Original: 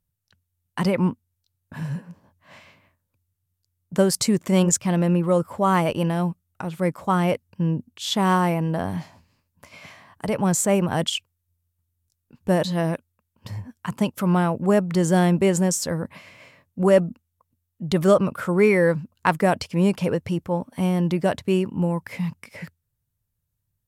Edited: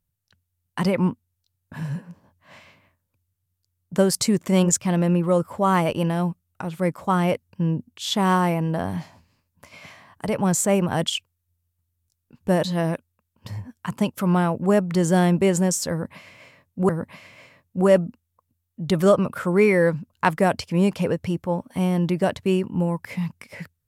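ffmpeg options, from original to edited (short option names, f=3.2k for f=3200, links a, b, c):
-filter_complex "[0:a]asplit=2[a][b];[a]atrim=end=16.892[c];[b]atrim=start=15.908[d];[c][d]acrossfade=d=0.004:c1=hsin:c2=hsin"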